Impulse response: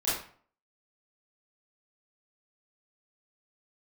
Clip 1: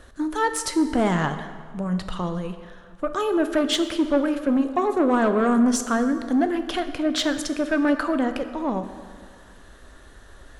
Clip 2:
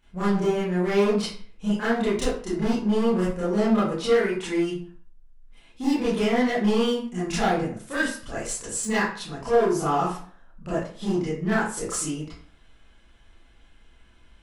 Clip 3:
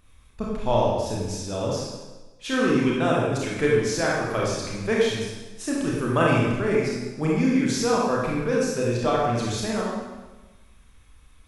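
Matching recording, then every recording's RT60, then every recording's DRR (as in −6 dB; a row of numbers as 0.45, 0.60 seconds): 2; 1.8, 0.50, 1.2 seconds; 8.0, −11.0, −4.5 decibels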